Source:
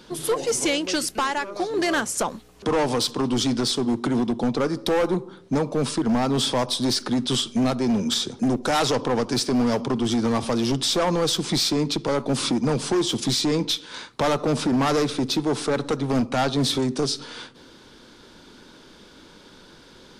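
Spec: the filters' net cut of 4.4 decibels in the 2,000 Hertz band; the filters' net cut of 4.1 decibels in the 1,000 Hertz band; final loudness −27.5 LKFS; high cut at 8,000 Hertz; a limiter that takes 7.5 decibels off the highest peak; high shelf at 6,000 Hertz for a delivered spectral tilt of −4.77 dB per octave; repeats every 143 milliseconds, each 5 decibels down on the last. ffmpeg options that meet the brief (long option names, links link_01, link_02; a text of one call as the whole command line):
ffmpeg -i in.wav -af "lowpass=8000,equalizer=frequency=1000:width_type=o:gain=-4.5,equalizer=frequency=2000:width_type=o:gain=-3.5,highshelf=frequency=6000:gain=-6,alimiter=limit=-23dB:level=0:latency=1,aecho=1:1:143|286|429|572|715|858|1001:0.562|0.315|0.176|0.0988|0.0553|0.031|0.0173,volume=0.5dB" out.wav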